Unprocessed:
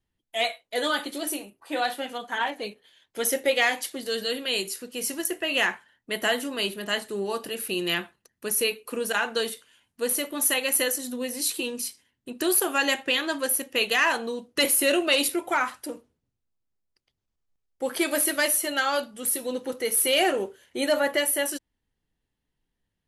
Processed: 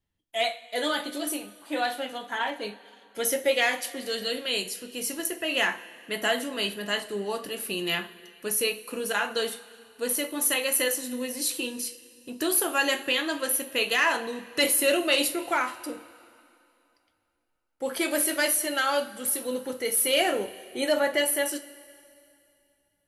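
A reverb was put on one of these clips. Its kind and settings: two-slope reverb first 0.29 s, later 2.7 s, from -18 dB, DRR 6 dB; trim -2 dB

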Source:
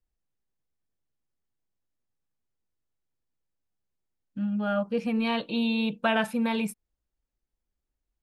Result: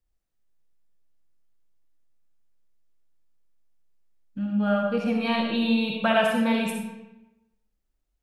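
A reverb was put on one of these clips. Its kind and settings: algorithmic reverb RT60 0.98 s, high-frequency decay 0.75×, pre-delay 20 ms, DRR 0.5 dB; trim +1 dB

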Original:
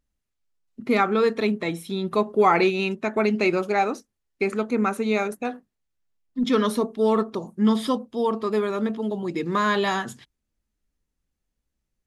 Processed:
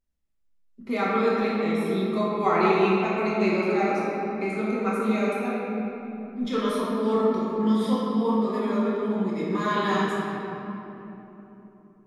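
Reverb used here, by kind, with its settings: simulated room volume 190 m³, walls hard, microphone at 1.1 m; trim -10 dB

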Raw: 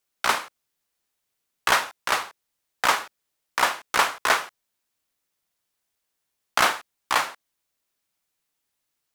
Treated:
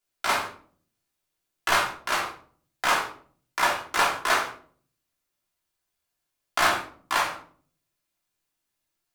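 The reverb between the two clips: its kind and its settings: simulated room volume 460 m³, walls furnished, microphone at 3.1 m; trim -6 dB

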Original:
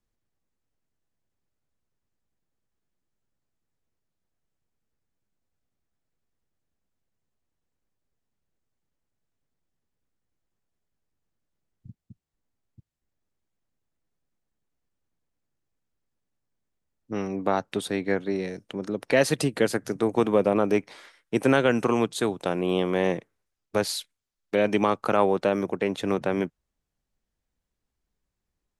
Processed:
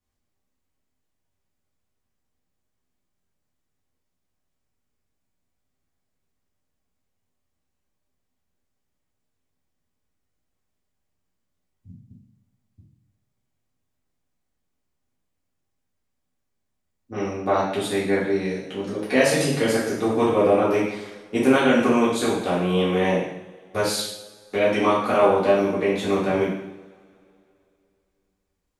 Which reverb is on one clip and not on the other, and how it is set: two-slope reverb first 0.74 s, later 2.9 s, from -24 dB, DRR -9 dB; trim -5 dB

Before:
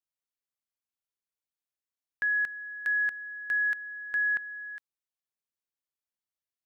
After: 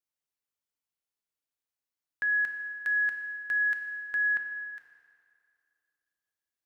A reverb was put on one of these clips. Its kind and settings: FDN reverb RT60 2.4 s, low-frequency decay 0.8×, high-frequency decay 0.8×, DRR 4 dB; trim -1 dB

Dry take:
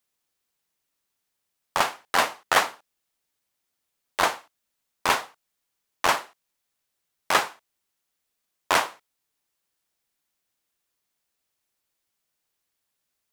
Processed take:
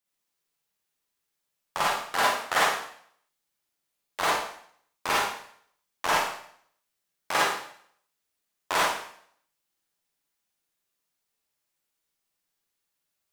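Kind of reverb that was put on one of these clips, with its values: Schroeder reverb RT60 0.61 s, DRR -5.5 dB; trim -8 dB

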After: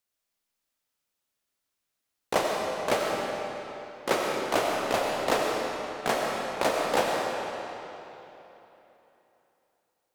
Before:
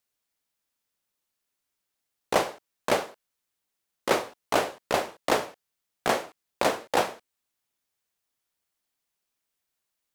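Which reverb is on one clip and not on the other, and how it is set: algorithmic reverb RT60 3.3 s, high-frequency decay 0.85×, pre-delay 50 ms, DRR -1 dB; trim -2.5 dB

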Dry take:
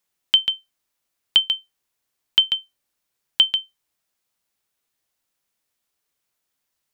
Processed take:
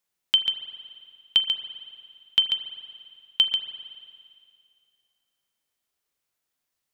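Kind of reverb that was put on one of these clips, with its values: spring tank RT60 2.2 s, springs 39 ms, chirp 40 ms, DRR 8.5 dB; trim -4 dB

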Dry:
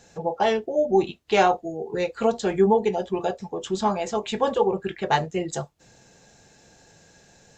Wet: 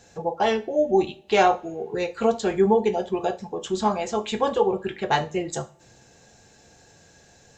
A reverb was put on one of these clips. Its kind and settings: two-slope reverb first 0.32 s, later 1.8 s, from -27 dB, DRR 9 dB

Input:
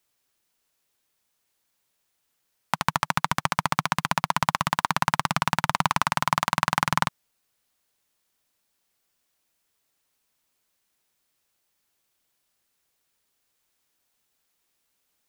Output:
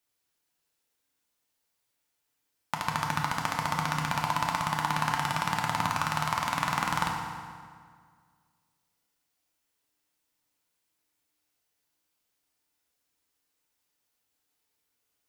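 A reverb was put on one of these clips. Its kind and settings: FDN reverb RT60 1.9 s, low-frequency decay 1.1×, high-frequency decay 0.75×, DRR -0.5 dB; trim -7.5 dB

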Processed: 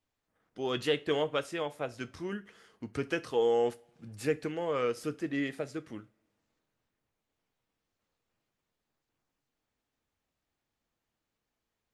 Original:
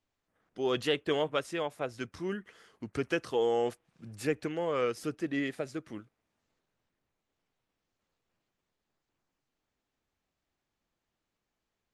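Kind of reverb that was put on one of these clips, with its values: two-slope reverb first 0.26 s, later 1.6 s, from -26 dB, DRR 11 dB; trim -1 dB

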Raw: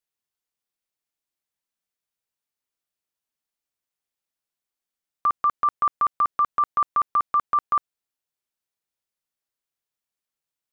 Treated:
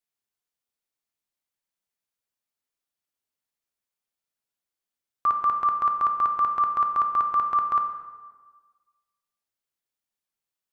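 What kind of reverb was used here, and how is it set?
plate-style reverb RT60 1.4 s, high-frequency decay 0.65×, DRR 4.5 dB; trim -2.5 dB

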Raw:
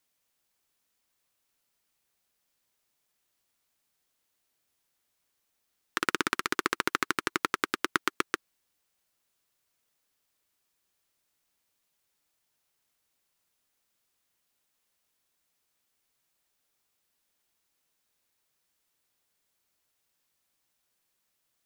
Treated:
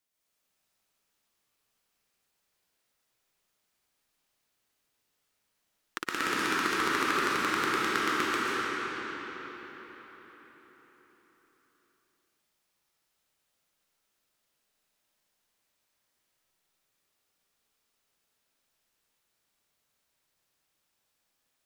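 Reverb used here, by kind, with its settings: algorithmic reverb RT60 4.9 s, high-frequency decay 0.75×, pre-delay 95 ms, DRR -9 dB; trim -7 dB

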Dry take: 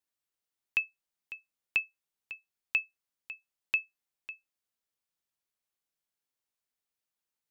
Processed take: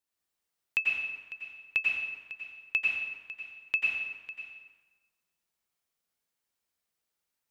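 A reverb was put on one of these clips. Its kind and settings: plate-style reverb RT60 1.3 s, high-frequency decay 0.75×, pre-delay 80 ms, DRR -3.5 dB

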